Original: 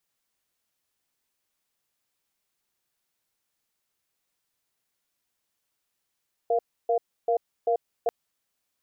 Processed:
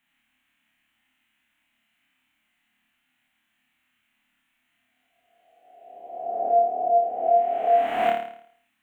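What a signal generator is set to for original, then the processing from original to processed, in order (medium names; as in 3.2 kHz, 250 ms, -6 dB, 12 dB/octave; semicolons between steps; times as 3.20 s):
cadence 470 Hz, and 692 Hz, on 0.09 s, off 0.30 s, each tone -23 dBFS 1.59 s
reverse spectral sustain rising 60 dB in 1.55 s; FFT filter 160 Hz 0 dB, 250 Hz +15 dB, 460 Hz -17 dB, 690 Hz +3 dB, 1.1 kHz +2 dB, 2 kHz +12 dB, 3 kHz +10 dB, 4.9 kHz -18 dB, 7.1 kHz -8 dB; on a send: flutter echo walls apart 4.7 m, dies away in 0.61 s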